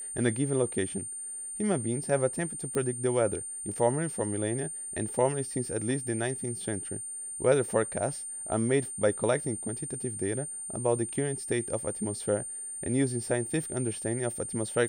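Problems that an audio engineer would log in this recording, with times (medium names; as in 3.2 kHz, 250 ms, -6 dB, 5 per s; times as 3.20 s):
whine 9 kHz -36 dBFS
2.75 s: pop -20 dBFS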